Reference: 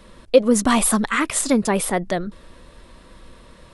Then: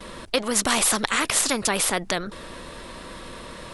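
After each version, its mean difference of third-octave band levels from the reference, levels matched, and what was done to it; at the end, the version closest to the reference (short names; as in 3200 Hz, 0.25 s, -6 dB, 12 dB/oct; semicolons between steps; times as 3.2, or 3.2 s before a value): 10.0 dB: low shelf 190 Hz -6.5 dB; gate with hold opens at -42 dBFS; spectral compressor 2:1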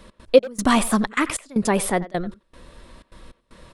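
4.5 dB: de-esser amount 35%; step gate "x.xx..xxxx" 154 bpm -24 dB; speakerphone echo 90 ms, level -16 dB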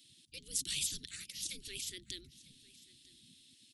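13.5 dB: Chebyshev band-stop 200–3300 Hz, order 3; spectral gate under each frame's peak -20 dB weak; echo 0.949 s -21 dB; gain -3.5 dB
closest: second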